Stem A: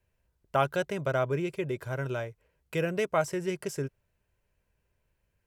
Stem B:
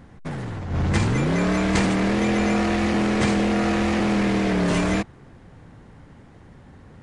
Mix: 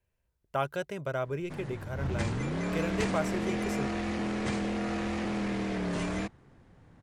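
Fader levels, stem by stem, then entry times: -4.5 dB, -11.0 dB; 0.00 s, 1.25 s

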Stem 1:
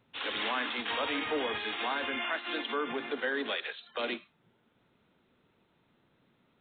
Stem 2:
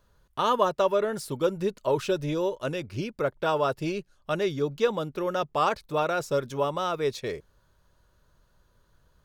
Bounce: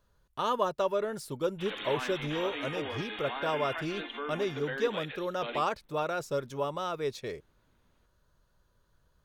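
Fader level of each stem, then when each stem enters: -5.0 dB, -5.5 dB; 1.45 s, 0.00 s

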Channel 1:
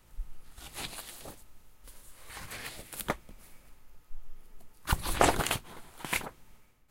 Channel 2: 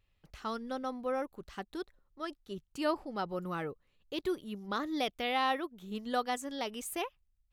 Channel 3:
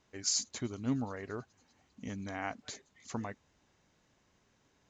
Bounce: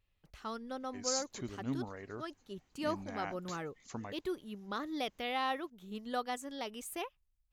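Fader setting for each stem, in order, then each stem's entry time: mute, -4.0 dB, -4.5 dB; mute, 0.00 s, 0.80 s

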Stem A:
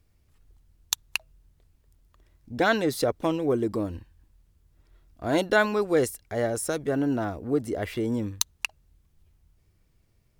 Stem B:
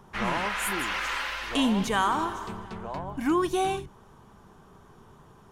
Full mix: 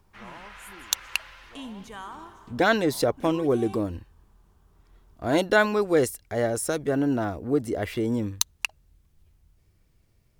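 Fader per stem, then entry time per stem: +1.5 dB, -15.0 dB; 0.00 s, 0.00 s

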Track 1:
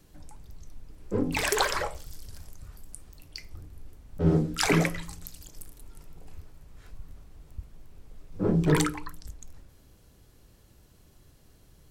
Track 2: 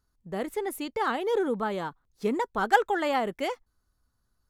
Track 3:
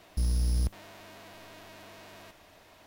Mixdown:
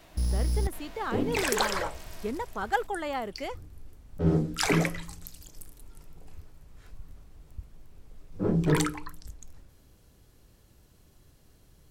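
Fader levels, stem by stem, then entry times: -1.5 dB, -6.0 dB, 0.0 dB; 0.00 s, 0.00 s, 0.00 s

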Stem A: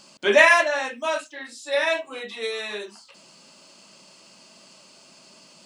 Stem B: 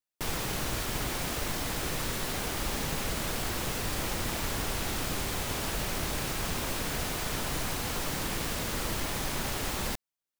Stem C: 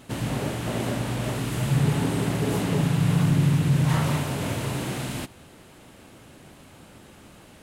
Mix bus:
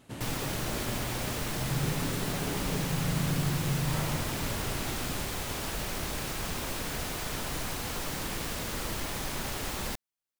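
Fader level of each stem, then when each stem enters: mute, -2.0 dB, -10.0 dB; mute, 0.00 s, 0.00 s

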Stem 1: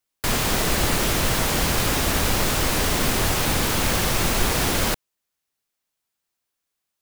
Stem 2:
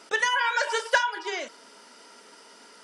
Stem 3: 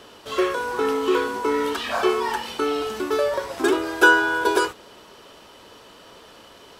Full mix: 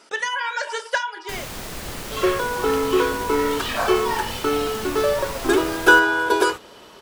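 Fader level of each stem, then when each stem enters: -11.5 dB, -1.0 dB, +1.5 dB; 1.05 s, 0.00 s, 1.85 s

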